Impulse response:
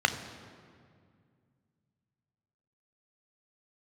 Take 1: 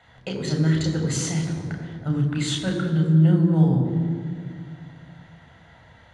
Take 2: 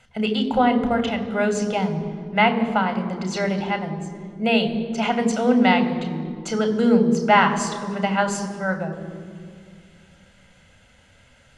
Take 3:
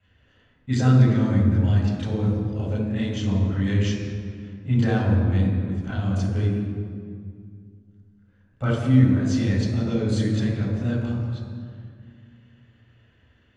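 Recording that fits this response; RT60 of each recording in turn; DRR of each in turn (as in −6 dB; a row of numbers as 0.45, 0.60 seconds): 2; 2.1, 2.1, 2.1 seconds; 1.0, 7.5, −8.0 decibels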